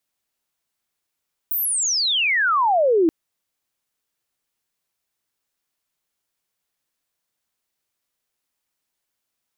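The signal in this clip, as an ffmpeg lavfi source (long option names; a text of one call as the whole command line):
ffmpeg -f lavfi -i "aevalsrc='pow(10,(-20+7*t/1.58)/20)*sin(2*PI*16000*1.58/log(310/16000)*(exp(log(310/16000)*t/1.58)-1))':duration=1.58:sample_rate=44100" out.wav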